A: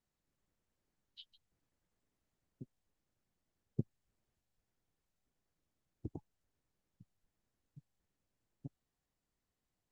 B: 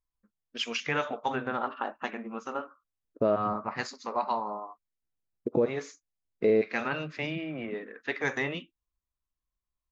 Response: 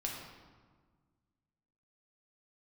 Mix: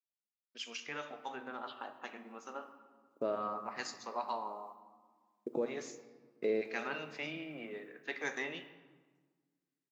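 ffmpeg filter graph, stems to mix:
-filter_complex "[0:a]highpass=frequency=1200:width=0.5412,highpass=frequency=1200:width=1.3066,adelay=500,volume=-2.5dB,asplit=2[link_01][link_02];[link_02]volume=-7dB[link_03];[1:a]aemphasis=mode=production:type=50fm,agate=range=-33dB:threshold=-49dB:ratio=3:detection=peak,highpass=230,volume=-16.5dB,asplit=3[link_04][link_05][link_06];[link_05]volume=-6dB[link_07];[link_06]apad=whole_len=459089[link_08];[link_01][link_08]sidechaingate=range=-33dB:threshold=-60dB:ratio=16:detection=peak[link_09];[2:a]atrim=start_sample=2205[link_10];[link_03][link_07]amix=inputs=2:normalize=0[link_11];[link_11][link_10]afir=irnorm=-1:irlink=0[link_12];[link_09][link_04][link_12]amix=inputs=3:normalize=0,dynaudnorm=framelen=690:gausssize=7:maxgain=5.5dB"

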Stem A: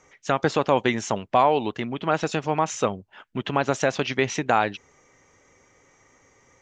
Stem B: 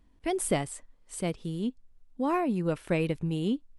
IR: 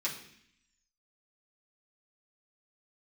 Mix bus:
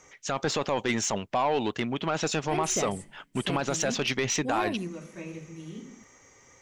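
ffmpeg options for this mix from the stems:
-filter_complex "[0:a]alimiter=limit=-14dB:level=0:latency=1:release=19,volume=0dB,asplit=2[link_01][link_02];[1:a]acrossover=split=2900[link_03][link_04];[link_04]acompressor=threshold=-49dB:ratio=4:attack=1:release=60[link_05];[link_03][link_05]amix=inputs=2:normalize=0,adelay=2250,volume=-4dB,asplit=2[link_06][link_07];[link_07]volume=-12dB[link_08];[link_02]apad=whole_len=266331[link_09];[link_06][link_09]sidechaingate=range=-33dB:threshold=-48dB:ratio=16:detection=peak[link_10];[2:a]atrim=start_sample=2205[link_11];[link_08][link_11]afir=irnorm=-1:irlink=0[link_12];[link_01][link_10][link_12]amix=inputs=3:normalize=0,highshelf=frequency=3800:gain=8,asoftclip=type=tanh:threshold=-17.5dB"

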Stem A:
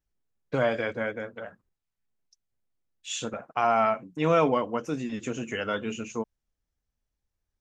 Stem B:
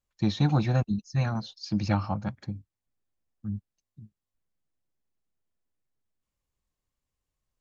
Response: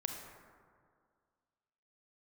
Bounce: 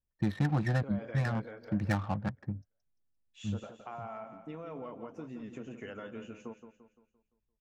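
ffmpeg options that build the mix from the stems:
-filter_complex "[0:a]lowpass=frequency=1400:poles=1,alimiter=limit=-21.5dB:level=0:latency=1:release=92,acompressor=threshold=-31dB:ratio=6,adelay=300,volume=-8dB,asplit=2[link_01][link_02];[link_02]volume=-9.5dB[link_03];[1:a]equalizer=frequency=1800:width_type=o:width=0.24:gain=14,adynamicsmooth=sensitivity=4.5:basefreq=530,volume=-1.5dB[link_04];[link_03]aecho=0:1:172|344|516|688|860|1032:1|0.44|0.194|0.0852|0.0375|0.0165[link_05];[link_01][link_04][link_05]amix=inputs=3:normalize=0,acompressor=threshold=-28dB:ratio=2"

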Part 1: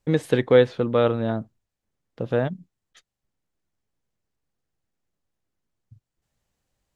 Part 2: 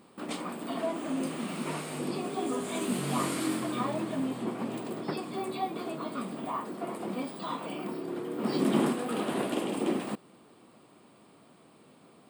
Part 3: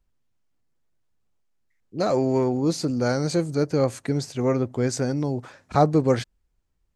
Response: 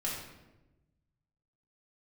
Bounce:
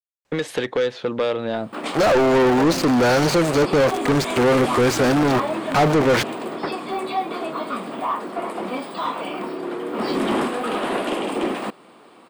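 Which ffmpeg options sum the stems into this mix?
-filter_complex "[0:a]acrossover=split=820|2900[link_01][link_02][link_03];[link_01]acompressor=threshold=-29dB:ratio=4[link_04];[link_02]acompressor=threshold=-44dB:ratio=4[link_05];[link_03]acompressor=threshold=-40dB:ratio=4[link_06];[link_04][link_05][link_06]amix=inputs=3:normalize=0,adelay=250,volume=-14dB[link_07];[1:a]adelay=1550,volume=-15.5dB[link_08];[2:a]aeval=exprs='val(0)*gte(abs(val(0)),0.0299)':channel_layout=same,volume=-4.5dB[link_09];[link_07][link_08][link_09]amix=inputs=3:normalize=0,asplit=2[link_10][link_11];[link_11]highpass=frequency=720:poles=1,volume=36dB,asoftclip=type=tanh:threshold=-8.5dB[link_12];[link_10][link_12]amix=inputs=2:normalize=0,lowpass=frequency=2500:poles=1,volume=-6dB"

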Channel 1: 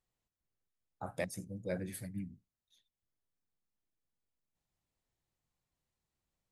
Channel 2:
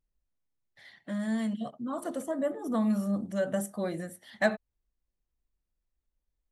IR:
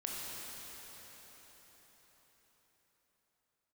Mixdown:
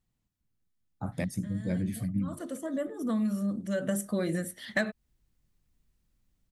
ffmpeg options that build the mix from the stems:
-filter_complex "[0:a]lowshelf=frequency=330:width_type=q:width=1.5:gain=9,volume=2dB[link_01];[1:a]equalizer=frequency=810:width=1.9:gain=-11,dynaudnorm=framelen=180:gausssize=7:maxgain=12dB,adelay=350,volume=-3dB,afade=type=in:start_time=1.91:duration=0.8:silence=0.281838,afade=type=in:start_time=3.61:duration=0.75:silence=0.398107[link_02];[link_01][link_02]amix=inputs=2:normalize=0,acompressor=threshold=-25dB:ratio=6"

